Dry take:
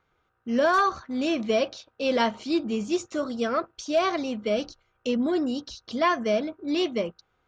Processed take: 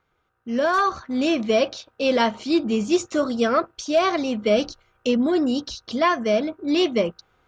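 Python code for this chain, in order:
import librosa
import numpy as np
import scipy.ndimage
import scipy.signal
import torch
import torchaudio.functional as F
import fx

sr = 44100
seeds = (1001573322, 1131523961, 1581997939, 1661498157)

y = fx.rider(x, sr, range_db=4, speed_s=0.5)
y = y * 10.0 ** (4.5 / 20.0)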